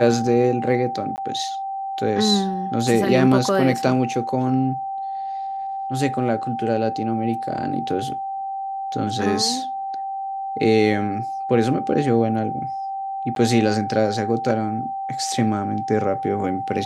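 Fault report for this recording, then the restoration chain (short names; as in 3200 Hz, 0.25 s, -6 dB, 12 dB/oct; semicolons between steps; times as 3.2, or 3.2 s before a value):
tone 780 Hz -25 dBFS
1.16–1.18 gap 19 ms
13.35–13.36 gap 12 ms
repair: notch 780 Hz, Q 30; interpolate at 1.16, 19 ms; interpolate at 13.35, 12 ms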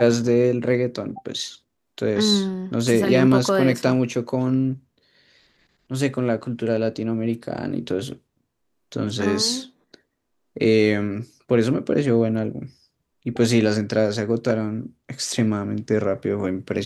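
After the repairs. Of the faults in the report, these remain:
none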